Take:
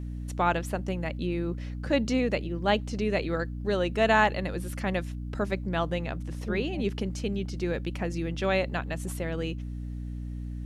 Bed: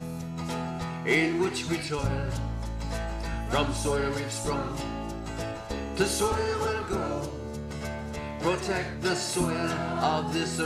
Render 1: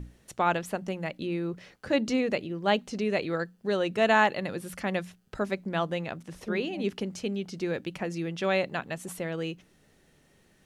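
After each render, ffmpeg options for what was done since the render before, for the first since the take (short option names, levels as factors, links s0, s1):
-af "bandreject=f=60:t=h:w=6,bandreject=f=120:t=h:w=6,bandreject=f=180:t=h:w=6,bandreject=f=240:t=h:w=6,bandreject=f=300:t=h:w=6"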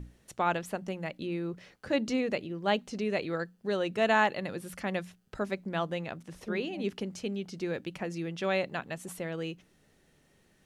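-af "volume=0.708"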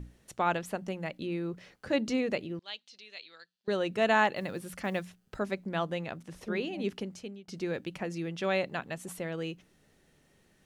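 -filter_complex "[0:a]asettb=1/sr,asplit=3[s0][s1][s2];[s0]atrim=end=2.594[s3];[s1]atrim=start=2.59:end=3.68,asetpts=PTS-STARTPTS,afade=t=in:d=0.004:c=qsin,afade=t=out:st=1.086:d=0.004:c=qsin,bandpass=f=3900:t=q:w=2.7[s4];[s2]atrim=start=3.676[s5];[s3][s4]acrossfade=d=0.004:c1=hsin:c2=qsin[s6];[s6][s5]acrossfade=d=0.004:c1=qsin:c2=hsin,asettb=1/sr,asplit=3[s7][s8][s9];[s7]atrim=end=4.364[s10];[s8]atrim=start=4.36:end=5.39,asetpts=PTS-STARTPTS,afade=t=in:d=0.004:c=qsin,afade=t=out:st=1.026:d=0.004:c=qsin,acrusher=bits=8:mode=log:mix=0:aa=0.000001[s11];[s9]atrim=start=5.386[s12];[s10][s11]acrossfade=d=0.004:c1=hsin:c2=qsin[s13];[s13][s12]acrossfade=d=0.004:c1=qsin:c2=hsin,asplit=2[s14][s15];[s14]atrim=end=7.48,asetpts=PTS-STARTPTS,afade=t=out:st=6.94:d=0.54:silence=0.0749894[s16];[s15]atrim=start=7.48,asetpts=PTS-STARTPTS,afade=t=in:d=0.004:c=hsin:silence=0.0749894[s17];[s16][s17]concat=n=2:v=0:a=1"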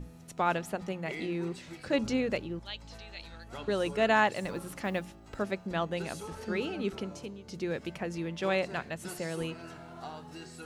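-filter_complex "[1:a]volume=0.141[s0];[0:a][s0]amix=inputs=2:normalize=0"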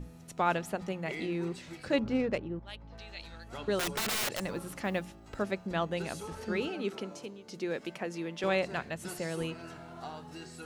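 -filter_complex "[0:a]asettb=1/sr,asplit=3[s0][s1][s2];[s0]atrim=end=1.994[s3];[s1]atrim=start=1.99:end=2.98,asetpts=PTS-STARTPTS,afade=t=in:d=0.004:c=qsin,afade=t=out:st=0.986:d=0.004:c=qsin,adynamicsmooth=sensitivity=3:basefreq=1600[s4];[s2]atrim=start=2.976[s5];[s3][s4]acrossfade=d=0.004:c1=hsin:c2=qsin[s6];[s6][s5]acrossfade=d=0.004:c1=qsin:c2=hsin,asettb=1/sr,asplit=3[s7][s8][s9];[s7]atrim=end=3.794[s10];[s8]atrim=start=3.79:end=4.4,asetpts=PTS-STARTPTS,afade=t=in:d=0.004:c=qsin,afade=t=out:st=0.606:d=0.004:c=qsin,aeval=exprs='(mod(22.4*val(0)+1,2)-1)/22.4':c=same[s11];[s9]atrim=start=4.396[s12];[s10][s11]acrossfade=d=0.004:c1=hsin:c2=qsin[s13];[s13][s12]acrossfade=d=0.004:c1=qsin:c2=hsin,asettb=1/sr,asplit=3[s14][s15][s16];[s14]atrim=end=6.684[s17];[s15]atrim=start=6.68:end=8.44,asetpts=PTS-STARTPTS,afade=t=in:d=0.004:c=qsin,afade=t=out:st=1.756:d=0.004:c=qsin,highpass=220[s18];[s16]atrim=start=8.436[s19];[s17][s18]acrossfade=d=0.004:c1=hsin:c2=qsin[s20];[s20][s19]acrossfade=d=0.004:c1=qsin:c2=hsin"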